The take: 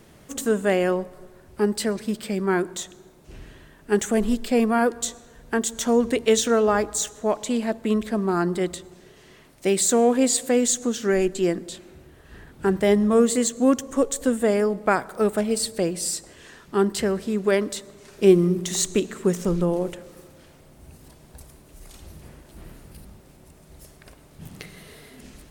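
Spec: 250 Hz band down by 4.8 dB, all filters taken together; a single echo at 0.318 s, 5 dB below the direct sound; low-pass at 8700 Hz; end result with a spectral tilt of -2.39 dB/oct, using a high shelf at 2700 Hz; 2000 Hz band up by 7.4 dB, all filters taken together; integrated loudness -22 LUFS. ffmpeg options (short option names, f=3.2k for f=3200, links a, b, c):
-af "lowpass=8.7k,equalizer=f=250:t=o:g=-6.5,equalizer=f=2k:t=o:g=7,highshelf=f=2.7k:g=6.5,aecho=1:1:318:0.562,volume=-0.5dB"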